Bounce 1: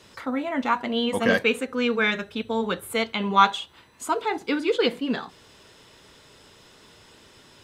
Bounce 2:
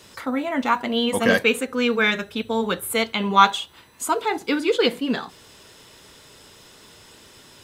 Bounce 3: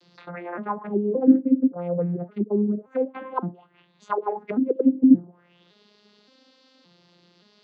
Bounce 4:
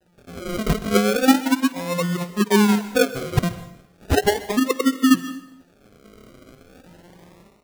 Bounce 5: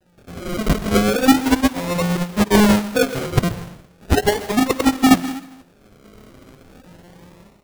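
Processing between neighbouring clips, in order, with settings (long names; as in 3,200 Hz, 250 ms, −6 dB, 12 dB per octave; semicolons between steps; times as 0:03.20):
high-shelf EQ 8,400 Hz +11 dB; level +2.5 dB
vocoder with an arpeggio as carrier minor triad, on F3, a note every 570 ms; envelope-controlled low-pass 300–4,600 Hz down, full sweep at −17.5 dBFS; level −6.5 dB
sample-and-hold swept by an LFO 39×, swing 60% 0.36 Hz; dense smooth reverb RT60 0.69 s, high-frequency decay 0.95×, pre-delay 115 ms, DRR 14 dB; automatic gain control gain up to 16 dB; level −4.5 dB
each half-wave held at its own peak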